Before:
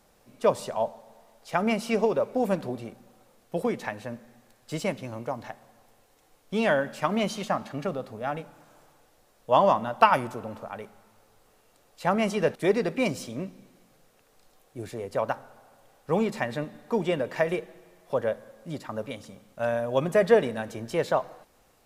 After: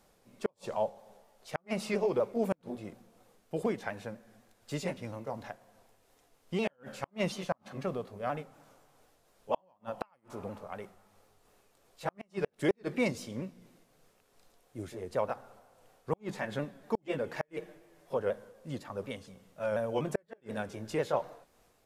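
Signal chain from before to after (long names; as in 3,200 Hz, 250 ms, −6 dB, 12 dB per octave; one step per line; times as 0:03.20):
pitch shifter swept by a sawtooth −2 semitones, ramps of 244 ms
gate with flip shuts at −14 dBFS, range −41 dB
level −3.5 dB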